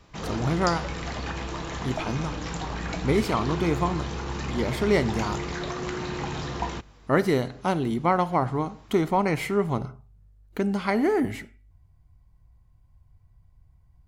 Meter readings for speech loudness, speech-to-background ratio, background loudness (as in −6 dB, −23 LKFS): −26.5 LKFS, 6.0 dB, −32.5 LKFS